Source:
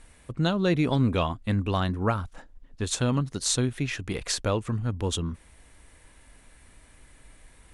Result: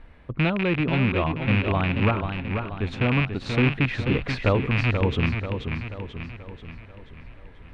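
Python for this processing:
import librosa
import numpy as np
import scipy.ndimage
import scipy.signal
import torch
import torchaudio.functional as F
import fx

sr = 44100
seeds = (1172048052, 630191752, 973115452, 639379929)

y = fx.rattle_buzz(x, sr, strikes_db=-27.0, level_db=-12.0)
y = fx.air_absorb(y, sr, metres=370.0)
y = fx.rider(y, sr, range_db=4, speed_s=0.5)
y = fx.high_shelf(y, sr, hz=9800.0, db=-12.0)
y = fx.echo_warbled(y, sr, ms=485, feedback_pct=51, rate_hz=2.8, cents=93, wet_db=-6.5)
y = y * librosa.db_to_amplitude(3.5)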